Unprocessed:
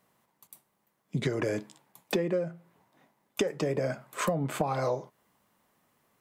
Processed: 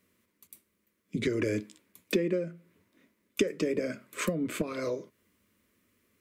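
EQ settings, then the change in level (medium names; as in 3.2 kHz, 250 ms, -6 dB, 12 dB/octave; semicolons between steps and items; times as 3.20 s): peaking EQ 99 Hz +14 dB 1.9 oct; peaking EQ 2.3 kHz +5.5 dB 0.36 oct; static phaser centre 330 Hz, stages 4; 0.0 dB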